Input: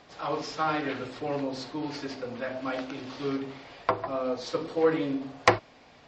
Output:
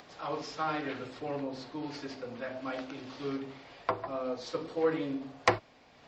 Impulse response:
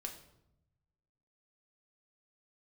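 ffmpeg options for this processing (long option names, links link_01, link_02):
-filter_complex "[0:a]asettb=1/sr,asplit=3[link_01][link_02][link_03];[link_01]atrim=end=1.314[link_04];[link_02]atrim=start=1.31:end=1.72,asetpts=PTS-STARTPTS,afade=type=in:duration=0.004:curve=qsin,afade=type=out:start_time=0.406:duration=0.004:curve=qsin,highshelf=frequency=6100:gain=-10[link_05];[link_03]atrim=start=1.716[link_06];[link_04][link_05]acrossfade=duration=0.004:curve1=hsin:curve2=qsin[link_07];[link_07][link_06]acrossfade=duration=0.004:curve1=qsin:curve2=hsin,acrossover=split=100[link_08][link_09];[link_08]acrusher=samples=12:mix=1:aa=0.000001[link_10];[link_09]acompressor=mode=upward:threshold=-43dB:ratio=2.5[link_11];[link_10][link_11]amix=inputs=2:normalize=0,volume=-5dB"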